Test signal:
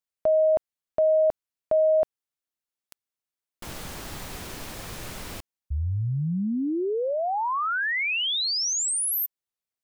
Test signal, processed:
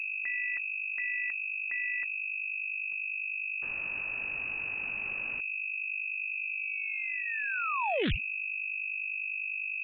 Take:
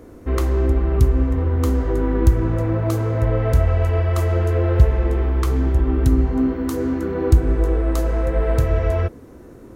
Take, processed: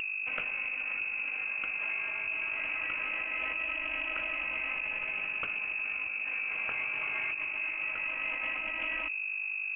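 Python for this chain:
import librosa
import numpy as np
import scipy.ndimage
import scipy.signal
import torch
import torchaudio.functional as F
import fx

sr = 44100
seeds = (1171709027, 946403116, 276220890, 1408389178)

p1 = fx.over_compress(x, sr, threshold_db=-22.0, ratio=-1.0)
p2 = x + (p1 * librosa.db_to_amplitude(1.0))
p3 = np.diff(p2, prepend=0.0)
p4 = fx.dmg_buzz(p3, sr, base_hz=50.0, harmonics=4, level_db=-41.0, tilt_db=-4, odd_only=False)
p5 = fx.low_shelf(p4, sr, hz=83.0, db=7.5)
p6 = fx.notch(p5, sr, hz=680.0, q=21.0)
p7 = (np.mod(10.0 ** (8.5 / 20.0) * p6 + 1.0, 2.0) - 1.0) / 10.0 ** (8.5 / 20.0)
p8 = fx.freq_invert(p7, sr, carrier_hz=2600)
y = fx.doppler_dist(p8, sr, depth_ms=0.46)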